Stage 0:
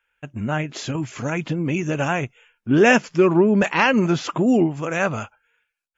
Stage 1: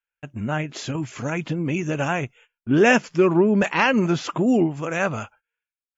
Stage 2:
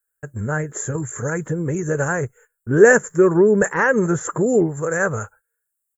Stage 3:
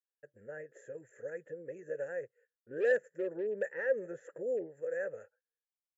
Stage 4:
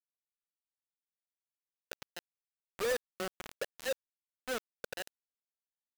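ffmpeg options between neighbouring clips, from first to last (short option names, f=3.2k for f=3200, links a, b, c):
-af "agate=range=-18dB:threshold=-48dB:ratio=16:detection=peak,volume=-1.5dB"
-af "firequalizer=gain_entry='entry(100,0);entry(270,-12);entry(450,4);entry(670,-10);entry(1700,0);entry(2500,-27);entry(4700,-26);entry(7500,13)':delay=0.05:min_phase=1,volume=6.5dB"
-filter_complex "[0:a]volume=8dB,asoftclip=hard,volume=-8dB,asplit=3[a][b][c];[a]bandpass=f=530:t=q:w=8,volume=0dB[d];[b]bandpass=f=1.84k:t=q:w=8,volume=-6dB[e];[c]bandpass=f=2.48k:t=q:w=8,volume=-9dB[f];[d][e][f]amix=inputs=3:normalize=0,volume=-9dB"
-af "acrusher=bits=4:mix=0:aa=0.000001,volume=-5dB"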